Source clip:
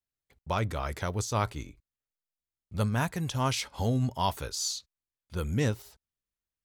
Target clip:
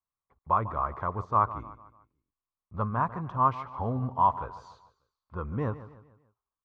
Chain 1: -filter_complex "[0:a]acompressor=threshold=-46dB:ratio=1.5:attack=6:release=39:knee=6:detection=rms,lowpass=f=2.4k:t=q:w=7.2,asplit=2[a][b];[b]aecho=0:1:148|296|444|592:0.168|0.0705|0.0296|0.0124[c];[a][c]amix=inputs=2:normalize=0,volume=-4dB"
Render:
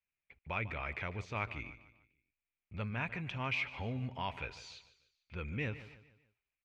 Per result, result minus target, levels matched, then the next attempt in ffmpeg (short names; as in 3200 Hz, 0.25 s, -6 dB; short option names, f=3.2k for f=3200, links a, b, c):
2000 Hz band +16.5 dB; compressor: peak gain reduction +8.5 dB
-filter_complex "[0:a]acompressor=threshold=-46dB:ratio=1.5:attack=6:release=39:knee=6:detection=rms,lowpass=f=1.1k:t=q:w=7.2,asplit=2[a][b];[b]aecho=0:1:148|296|444|592:0.168|0.0705|0.0296|0.0124[c];[a][c]amix=inputs=2:normalize=0,volume=-4dB"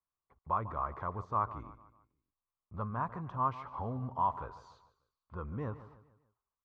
compressor: peak gain reduction +8.5 dB
-filter_complex "[0:a]lowpass=f=1.1k:t=q:w=7.2,asplit=2[a][b];[b]aecho=0:1:148|296|444|592:0.168|0.0705|0.0296|0.0124[c];[a][c]amix=inputs=2:normalize=0,volume=-4dB"